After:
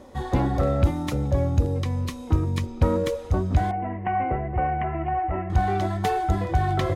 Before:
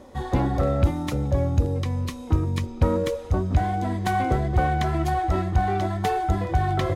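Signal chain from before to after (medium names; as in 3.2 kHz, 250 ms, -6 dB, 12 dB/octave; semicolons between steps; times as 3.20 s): 3.71–5.50 s: rippled Chebyshev low-pass 2.9 kHz, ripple 6 dB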